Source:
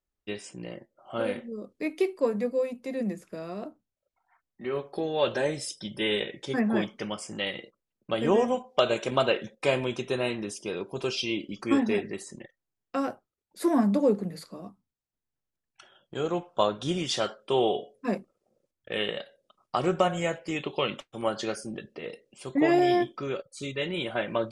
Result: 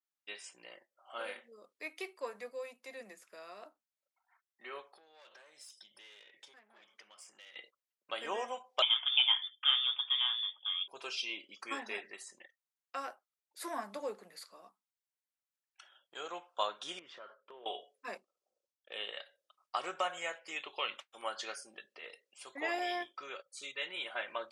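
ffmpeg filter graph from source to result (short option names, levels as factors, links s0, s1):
-filter_complex "[0:a]asettb=1/sr,asplit=3[s0][s1][s2];[s0]atrim=end=4.924[s3];[s1]atrim=start=4.92:end=7.56,asetpts=PTS-STARTPTS,afade=t=in:d=0.004:c=qsin,afade=t=out:st=2.636:d=0.004:c=qsin,aeval=exprs='(tanh(17.8*val(0)+0.45)-tanh(0.45))/17.8':c=same,acompressor=threshold=0.00562:ratio=10:attack=3.2:release=140:knee=1:detection=peak[s4];[s2]atrim=start=7.556[s5];[s3][s4]acrossfade=d=0.004:c1=hsin:c2=qsin[s6];[s6][s5]acrossfade=d=0.004:c1=qsin:c2=hsin,asettb=1/sr,asplit=3[s7][s8][s9];[s7]atrim=end=8.824[s10];[s8]atrim=start=8.82:end=10.88,asetpts=PTS-STARTPTS,afade=t=in:d=0.004:c=qsin,afade=t=out:st=2.056:d=0.004:c=qsin,highpass=59,tiltshelf=f=840:g=4.5,lowpass=f=3100:t=q:w=0.5098,lowpass=f=3100:t=q:w=0.6013,lowpass=f=3100:t=q:w=0.9,lowpass=f=3100:t=q:w=2.563,afreqshift=-3700[s11];[s9]atrim=start=10.876[s12];[s10][s11]acrossfade=d=0.004:c1=hsin:c2=qsin[s13];[s13][s12]acrossfade=d=0.004:c1=qsin:c2=hsin,asettb=1/sr,asplit=3[s14][s15][s16];[s14]atrim=end=16.994[s17];[s15]atrim=start=16.99:end=17.66,asetpts=PTS-STARTPTS,afade=t=in:d=0.004:c=qsin,afade=t=out:st=0.666:d=0.004:c=qsin,lowpass=1200,acompressor=threshold=0.0251:ratio=6:attack=3.2:release=140:knee=1:detection=peak,equalizer=f=770:w=5.8:g=-13.5[s18];[s16]atrim=start=17.656[s19];[s17][s18]acrossfade=d=0.004:c1=hsin:c2=qsin[s20];[s20][s19]acrossfade=d=0.004:c1=qsin:c2=hsin,asettb=1/sr,asplit=3[s21][s22][s23];[s21]atrim=end=18.174[s24];[s22]atrim=start=18.17:end=19.13,asetpts=PTS-STARTPTS,afade=t=in:d=0.004:c=qsin,afade=t=out:st=0.956:d=0.004:c=qsin,highpass=150,lowpass=7200,equalizer=f=1800:w=1.1:g=-9.5[s25];[s23]atrim=start=19.126[s26];[s24][s25]acrossfade=d=0.004:c1=hsin:c2=qsin[s27];[s27][s26]acrossfade=d=0.004:c1=qsin:c2=hsin,highpass=970,adynamicequalizer=threshold=0.00501:dfrequency=3400:dqfactor=0.7:tfrequency=3400:tqfactor=0.7:attack=5:release=100:ratio=0.375:range=2:mode=cutabove:tftype=highshelf,volume=0.631"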